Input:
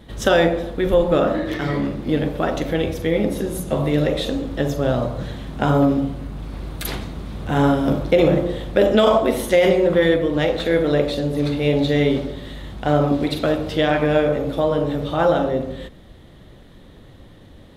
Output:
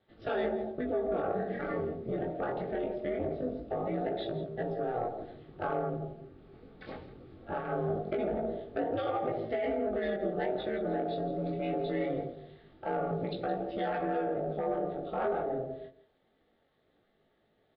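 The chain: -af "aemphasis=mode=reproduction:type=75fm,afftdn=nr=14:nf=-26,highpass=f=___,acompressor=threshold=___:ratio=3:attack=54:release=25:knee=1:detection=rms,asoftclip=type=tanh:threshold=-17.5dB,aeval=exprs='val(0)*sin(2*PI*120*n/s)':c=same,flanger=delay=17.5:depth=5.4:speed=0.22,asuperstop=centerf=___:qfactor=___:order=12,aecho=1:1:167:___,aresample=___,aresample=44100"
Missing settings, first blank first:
370, -29dB, 990, 7, 0.168, 11025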